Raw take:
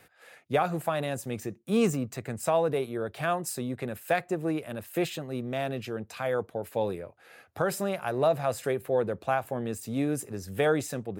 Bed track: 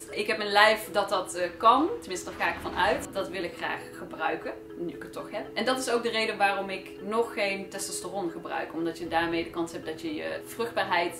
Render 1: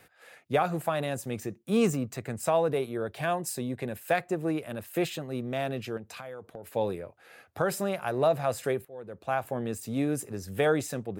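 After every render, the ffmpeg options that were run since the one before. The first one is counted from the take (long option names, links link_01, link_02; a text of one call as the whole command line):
ffmpeg -i in.wav -filter_complex "[0:a]asettb=1/sr,asplit=3[link_01][link_02][link_03];[link_01]atrim=end=3.164[link_04];[link_02]atrim=start=3.16:end=4.01,asetpts=PTS-STARTPTS,afade=type=in:duration=0.004:curve=qsin,afade=type=out:start_time=0.846:duration=0.004:curve=qsin,bandreject=frequency=1300:width=5.3[link_05];[link_03]atrim=start=4.006[link_06];[link_04][link_05]acrossfade=duration=0.004:curve1=hsin:curve2=qsin[link_07];[link_07][link_06]acrossfade=duration=0.004:curve1=qsin:curve2=hsin,asettb=1/sr,asplit=3[link_08][link_09][link_10];[link_08]atrim=end=5.974[link_11];[link_09]atrim=start=5.97:end=6.72,asetpts=PTS-STARTPTS,afade=type=in:duration=0.004:curve=qsin,afade=type=out:start_time=0.746:duration=0.004:curve=qsin,acompressor=threshold=-38dB:ratio=6:attack=3.2:release=140:knee=1:detection=peak[link_12];[link_10]atrim=start=6.716[link_13];[link_11][link_12]acrossfade=duration=0.004:curve1=hsin:curve2=qsin[link_14];[link_14][link_13]acrossfade=duration=0.004:curve1=qsin:curve2=hsin,asplit=2[link_15][link_16];[link_15]atrim=end=8.85,asetpts=PTS-STARTPTS,afade=type=out:start_time=8.846:duration=0.004:curve=hsin:silence=0.1[link_17];[link_16]atrim=start=8.85,asetpts=PTS-STARTPTS,afade=type=in:duration=0.55:curve=qua:silence=0.1[link_18];[link_17][link_18]concat=n=2:v=0:a=1" out.wav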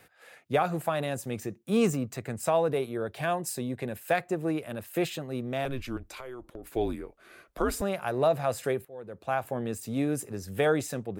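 ffmpeg -i in.wav -filter_complex "[0:a]asettb=1/sr,asplit=3[link_01][link_02][link_03];[link_01]atrim=end=5.654[link_04];[link_02]atrim=start=5.65:end=7.82,asetpts=PTS-STARTPTS,afade=type=in:duration=0.004:curve=qsin,afade=type=out:start_time=2.166:duration=0.004:curve=qsin,afreqshift=-130[link_05];[link_03]atrim=start=7.816[link_06];[link_04][link_05]acrossfade=duration=0.004:curve1=hsin:curve2=qsin[link_07];[link_07][link_06]acrossfade=duration=0.004:curve1=qsin:curve2=hsin" out.wav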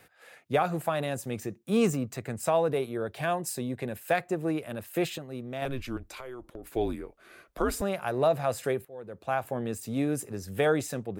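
ffmpeg -i in.wav -filter_complex "[0:a]asplit=3[link_01][link_02][link_03];[link_01]atrim=end=5.182[link_04];[link_02]atrim=start=5.178:end=5.622,asetpts=PTS-STARTPTS,volume=-4.5dB[link_05];[link_03]atrim=start=5.618[link_06];[link_04][link_05]acrossfade=duration=0.004:curve1=hsin:curve2=hsin[link_07];[link_07][link_06]acrossfade=duration=0.004:curve1=hsin:curve2=hsin" out.wav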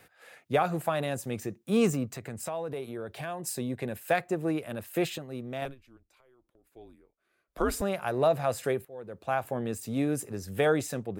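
ffmpeg -i in.wav -filter_complex "[0:a]asettb=1/sr,asplit=3[link_01][link_02][link_03];[link_01]atrim=end=2.104[link_04];[link_02]atrim=start=2.1:end=3.47,asetpts=PTS-STARTPTS,afade=type=in:duration=0.004:curve=qsin,afade=type=out:start_time=1.366:duration=0.004:curve=qsin,acompressor=threshold=-35dB:ratio=2.5:attack=3.2:release=140:knee=1:detection=peak[link_05];[link_03]atrim=start=3.466[link_06];[link_04][link_05]acrossfade=duration=0.004:curve1=hsin:curve2=qsin[link_07];[link_07][link_06]acrossfade=duration=0.004:curve1=qsin:curve2=hsin,asplit=3[link_08][link_09][link_10];[link_08]atrim=end=5.75,asetpts=PTS-STARTPTS,afade=type=out:start_time=5.6:duration=0.15:silence=0.0794328[link_11];[link_09]atrim=start=5.75:end=7.47,asetpts=PTS-STARTPTS,volume=-22dB[link_12];[link_10]atrim=start=7.47,asetpts=PTS-STARTPTS,afade=type=in:duration=0.15:silence=0.0794328[link_13];[link_11][link_12][link_13]concat=n=3:v=0:a=1" out.wav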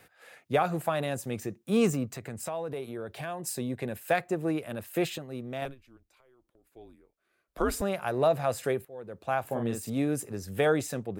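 ffmpeg -i in.wav -filter_complex "[0:a]asettb=1/sr,asplit=3[link_01][link_02][link_03];[link_01]atrim=end=9.454[link_04];[link_02]atrim=start=9.45:end=9.9,asetpts=PTS-STARTPTS,afade=type=in:duration=0.004:curve=qsin,afade=type=out:start_time=0.446:duration=0.004:curve=qsin,asplit=2[link_05][link_06];[link_06]adelay=43,volume=-4.5dB[link_07];[link_05][link_07]amix=inputs=2:normalize=0,atrim=end_sample=19845[link_08];[link_03]atrim=start=9.896[link_09];[link_04][link_08]acrossfade=duration=0.004:curve1=hsin:curve2=qsin[link_10];[link_10][link_09]acrossfade=duration=0.004:curve1=qsin:curve2=hsin" out.wav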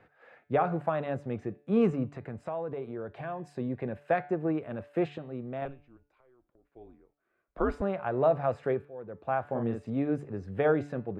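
ffmpeg -i in.wav -af "lowpass=1600,bandreject=frequency=144.8:width_type=h:width=4,bandreject=frequency=289.6:width_type=h:width=4,bandreject=frequency=434.4:width_type=h:width=4,bandreject=frequency=579.2:width_type=h:width=4,bandreject=frequency=724:width_type=h:width=4,bandreject=frequency=868.8:width_type=h:width=4,bandreject=frequency=1013.6:width_type=h:width=4,bandreject=frequency=1158.4:width_type=h:width=4,bandreject=frequency=1303.2:width_type=h:width=4,bandreject=frequency=1448:width_type=h:width=4,bandreject=frequency=1592.8:width_type=h:width=4,bandreject=frequency=1737.6:width_type=h:width=4,bandreject=frequency=1882.4:width_type=h:width=4,bandreject=frequency=2027.2:width_type=h:width=4,bandreject=frequency=2172:width_type=h:width=4,bandreject=frequency=2316.8:width_type=h:width=4,bandreject=frequency=2461.6:width_type=h:width=4,bandreject=frequency=2606.4:width_type=h:width=4,bandreject=frequency=2751.2:width_type=h:width=4,bandreject=frequency=2896:width_type=h:width=4,bandreject=frequency=3040.8:width_type=h:width=4,bandreject=frequency=3185.6:width_type=h:width=4,bandreject=frequency=3330.4:width_type=h:width=4,bandreject=frequency=3475.2:width_type=h:width=4,bandreject=frequency=3620:width_type=h:width=4,bandreject=frequency=3764.8:width_type=h:width=4,bandreject=frequency=3909.6:width_type=h:width=4,bandreject=frequency=4054.4:width_type=h:width=4,bandreject=frequency=4199.2:width_type=h:width=4,bandreject=frequency=4344:width_type=h:width=4,bandreject=frequency=4488.8:width_type=h:width=4,bandreject=frequency=4633.6:width_type=h:width=4" out.wav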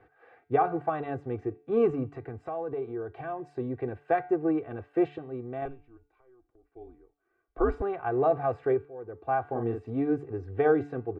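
ffmpeg -i in.wav -af "lowpass=frequency=1600:poles=1,aecho=1:1:2.6:0.84" out.wav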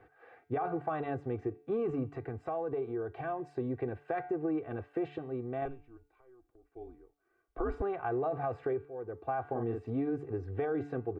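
ffmpeg -i in.wav -af "alimiter=limit=-21.5dB:level=0:latency=1:release=16,acompressor=threshold=-31dB:ratio=2.5" out.wav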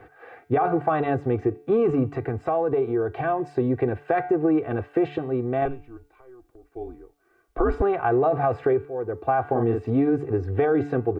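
ffmpeg -i in.wav -af "volume=12dB" out.wav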